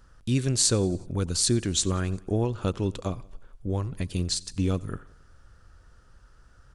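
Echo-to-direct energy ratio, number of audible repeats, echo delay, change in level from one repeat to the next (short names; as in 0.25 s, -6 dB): -21.5 dB, 3, 90 ms, -4.5 dB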